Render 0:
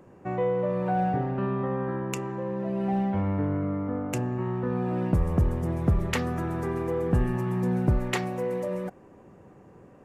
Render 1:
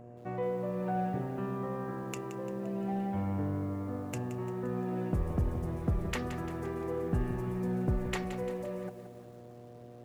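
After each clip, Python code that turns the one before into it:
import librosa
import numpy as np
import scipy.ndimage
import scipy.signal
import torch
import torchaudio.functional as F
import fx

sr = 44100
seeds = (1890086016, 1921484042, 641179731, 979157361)

y = fx.dmg_buzz(x, sr, base_hz=120.0, harmonics=6, level_db=-43.0, tilt_db=-2, odd_only=False)
y = fx.echo_crushed(y, sr, ms=173, feedback_pct=55, bits=8, wet_db=-11.0)
y = y * 10.0 ** (-7.5 / 20.0)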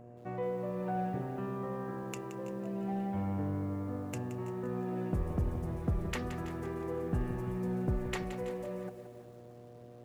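y = x + 10.0 ** (-17.0 / 20.0) * np.pad(x, (int(327 * sr / 1000.0), 0))[:len(x)]
y = y * 10.0 ** (-2.0 / 20.0)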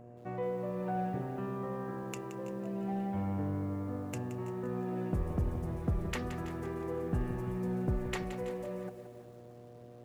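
y = x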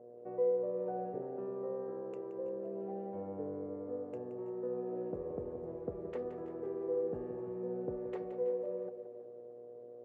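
y = fx.bandpass_q(x, sr, hz=470.0, q=4.2)
y = y * 10.0 ** (6.5 / 20.0)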